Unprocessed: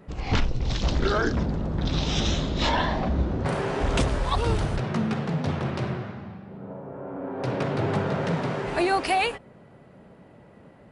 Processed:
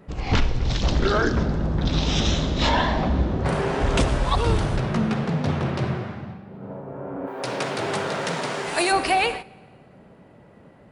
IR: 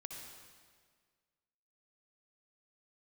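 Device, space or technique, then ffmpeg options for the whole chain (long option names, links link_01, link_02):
keyed gated reverb: -filter_complex "[0:a]asplit=3[link_01][link_02][link_03];[link_01]afade=type=out:start_time=7.26:duration=0.02[link_04];[link_02]aemphasis=mode=production:type=riaa,afade=type=in:start_time=7.26:duration=0.02,afade=type=out:start_time=8.91:duration=0.02[link_05];[link_03]afade=type=in:start_time=8.91:duration=0.02[link_06];[link_04][link_05][link_06]amix=inputs=3:normalize=0,asplit=3[link_07][link_08][link_09];[1:a]atrim=start_sample=2205[link_10];[link_08][link_10]afir=irnorm=-1:irlink=0[link_11];[link_09]apad=whole_len=481301[link_12];[link_11][link_12]sidechaingate=range=-13dB:threshold=-38dB:ratio=16:detection=peak,volume=-2.5dB[link_13];[link_07][link_13]amix=inputs=2:normalize=0"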